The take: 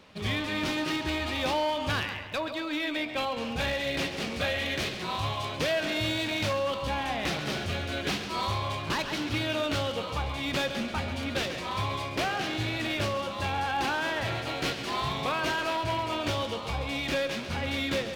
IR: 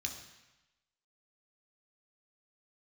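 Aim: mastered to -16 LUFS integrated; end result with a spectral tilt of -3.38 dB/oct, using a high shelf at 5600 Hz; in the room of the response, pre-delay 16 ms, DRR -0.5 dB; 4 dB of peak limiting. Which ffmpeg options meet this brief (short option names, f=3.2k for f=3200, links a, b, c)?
-filter_complex "[0:a]highshelf=f=5.6k:g=-6.5,alimiter=limit=-24dB:level=0:latency=1,asplit=2[a][b];[1:a]atrim=start_sample=2205,adelay=16[c];[b][c]afir=irnorm=-1:irlink=0,volume=0.5dB[d];[a][d]amix=inputs=2:normalize=0,volume=12dB"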